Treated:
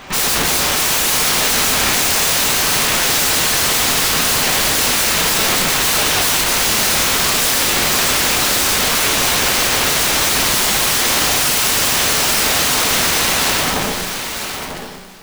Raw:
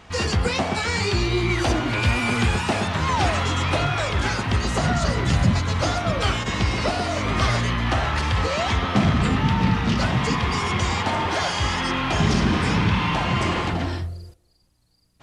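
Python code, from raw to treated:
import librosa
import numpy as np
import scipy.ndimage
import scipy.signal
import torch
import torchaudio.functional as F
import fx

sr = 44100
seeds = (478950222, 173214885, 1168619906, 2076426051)

p1 = fx.fade_out_tail(x, sr, length_s=3.47)
p2 = fx.low_shelf(p1, sr, hz=180.0, db=-12.0)
p3 = fx.rider(p2, sr, range_db=4, speed_s=0.5)
p4 = p2 + (p3 * 10.0 ** (1.0 / 20.0))
p5 = (np.mod(10.0 ** (18.5 / 20.0) * p4 + 1.0, 2.0) - 1.0) / 10.0 ** (18.5 / 20.0)
p6 = p5 + fx.echo_single(p5, sr, ms=948, db=-8.0, dry=0)
p7 = fx.rev_double_slope(p6, sr, seeds[0], early_s=0.44, late_s=4.4, knee_db=-18, drr_db=2.0)
p8 = p7 * np.sign(np.sin(2.0 * np.pi * 100.0 * np.arange(len(p7)) / sr))
y = p8 * 10.0 ** (5.0 / 20.0)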